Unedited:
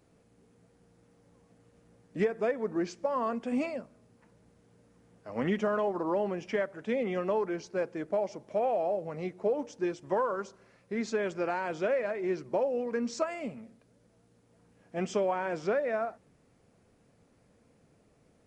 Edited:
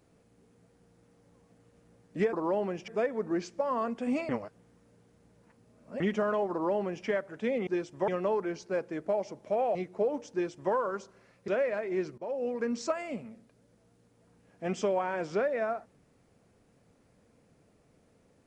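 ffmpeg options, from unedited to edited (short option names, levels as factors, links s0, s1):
-filter_complex "[0:a]asplit=10[s0][s1][s2][s3][s4][s5][s6][s7][s8][s9];[s0]atrim=end=2.332[s10];[s1]atrim=start=5.958:end=6.512[s11];[s2]atrim=start=2.328:end=3.742[s12];[s3]atrim=start=3.738:end=5.452,asetpts=PTS-STARTPTS,areverse[s13];[s4]atrim=start=5.448:end=7.122[s14];[s5]atrim=start=9.768:end=10.182[s15];[s6]atrim=start=7.118:end=8.792[s16];[s7]atrim=start=9.198:end=10.932[s17];[s8]atrim=start=11.798:end=12.5,asetpts=PTS-STARTPTS,afade=t=out:st=0.698:d=0.004:c=hsin:silence=0.11885[s18];[s9]atrim=start=12.5,asetpts=PTS-STARTPTS,afade=t=in:d=0.29:silence=0.11885[s19];[s10][s11]acrossfade=d=0.004:c1=hsin:c2=hsin[s20];[s20][s12]acrossfade=d=0.004:c1=hsin:c2=hsin[s21];[s21][s13]acrossfade=d=0.004:c1=hsin:c2=hsin[s22];[s22][s14]acrossfade=d=0.004:c1=hsin:c2=hsin[s23];[s23][s15]acrossfade=d=0.004:c1=hsin:c2=hsin[s24];[s24][s16]acrossfade=d=0.004:c1=hsin:c2=hsin[s25];[s25][s17]acrossfade=d=0.004:c1=hsin:c2=hsin[s26];[s18][s19]concat=n=2:v=0:a=1[s27];[s26][s27]acrossfade=d=0.004:c1=hsin:c2=hsin"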